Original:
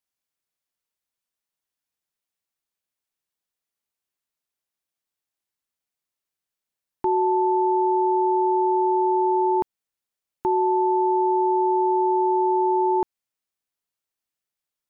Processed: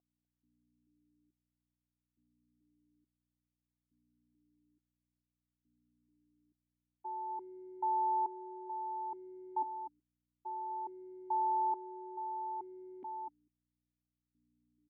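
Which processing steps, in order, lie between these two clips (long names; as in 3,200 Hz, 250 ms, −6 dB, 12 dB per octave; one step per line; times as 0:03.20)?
downward expander −14 dBFS
flat-topped bell 690 Hz +10 dB 1.2 octaves
brickwall limiter −21.5 dBFS, peak gain reduction 7 dB
mains hum 60 Hz, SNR 29 dB
high-frequency loss of the air 270 metres
single-tap delay 248 ms −9.5 dB
formant filter that steps through the vowels 2.3 Hz
level +1.5 dB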